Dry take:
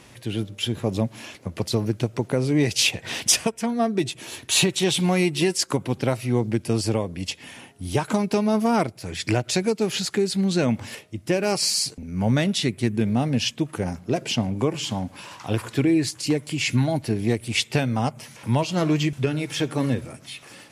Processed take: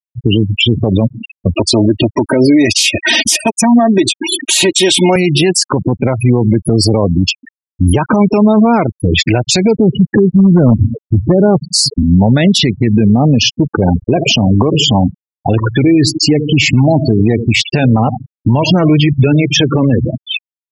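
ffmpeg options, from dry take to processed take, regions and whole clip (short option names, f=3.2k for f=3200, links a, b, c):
-filter_complex "[0:a]asettb=1/sr,asplit=3[a][b][c];[a]atrim=end=1.554[d];[b]atrim=start=1.55:end=5.16,asetpts=PTS-STARTPTS,afade=t=in:d=0.004:c=qsin,afade=t=out:st=3.606:d=0.004:c=qsin,highpass=f=130:p=1,highshelf=f=4.1k:g=3,aecho=1:1:3.2:0.75,atrim=end_sample=159201[e];[c]atrim=start=5.156[f];[d][e]acrossfade=d=0.004:c1=hsin:c2=qsin[g];[g][f]acrossfade=d=0.004:c1=qsin:c2=hsin,asettb=1/sr,asplit=3[h][i][j];[h]atrim=end=9.754[k];[i]atrim=start=9.75:end=11.74,asetpts=PTS-STARTPTS,afade=t=in:d=0.004:c=qsin,afade=t=out:st=1.986:d=0.004:c=qsin,lowpass=f=1k:p=1,aemphasis=mode=reproduction:type=bsi,aeval=exprs='0.282*(abs(mod(val(0)/0.282+3,4)-2)-1)':c=same[l];[j]atrim=start=11.736[m];[k][l]acrossfade=d=0.004:c1=hsin:c2=qsin[n];[n][m]acrossfade=d=0.004:c1=qsin:c2=hsin,asettb=1/sr,asplit=3[o][p][q];[o]atrim=end=13.654[r];[p]atrim=start=13.65:end=18.76,asetpts=PTS-STARTPTS,afade=t=in:d=0.004:c=qsin,afade=t=out:st=5.106:d=0.004:c=qsin,agate=range=-18dB:threshold=-38dB:ratio=16:release=100:detection=peak,aecho=1:1:81|162|243|324|405:0.126|0.0705|0.0395|0.0221|0.0124,atrim=end_sample=225351[s];[q]atrim=start=18.756[t];[r][s]acrossfade=d=0.004:c1=hsin:c2=qsin[u];[u][t]acrossfade=d=0.004:c1=qsin:c2=hsin,afftfilt=real='re*gte(hypot(re,im),0.0562)':imag='im*gte(hypot(re,im),0.0562)':win_size=1024:overlap=0.75,acompressor=threshold=-25dB:ratio=4,alimiter=level_in=26.5dB:limit=-1dB:release=50:level=0:latency=1,volume=-1dB"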